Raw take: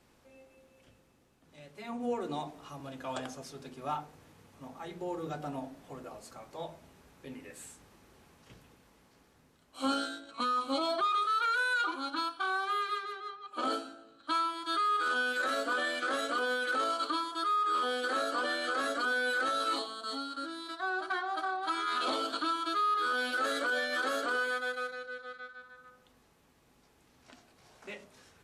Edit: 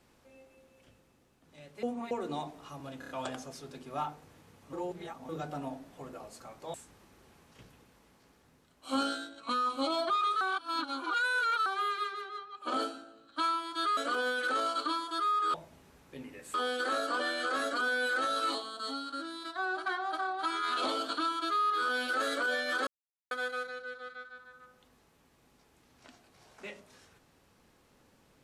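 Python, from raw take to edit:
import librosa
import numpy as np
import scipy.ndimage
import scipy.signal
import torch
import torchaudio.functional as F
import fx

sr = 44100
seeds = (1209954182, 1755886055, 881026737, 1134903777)

y = fx.edit(x, sr, fx.reverse_span(start_s=1.83, length_s=0.28),
    fx.stutter(start_s=3.0, slice_s=0.03, count=4),
    fx.reverse_span(start_s=4.64, length_s=0.56),
    fx.move(start_s=6.65, length_s=1.0, to_s=17.78),
    fx.reverse_span(start_s=11.32, length_s=1.25),
    fx.cut(start_s=14.88, length_s=1.33),
    fx.silence(start_s=24.11, length_s=0.44), tone=tone)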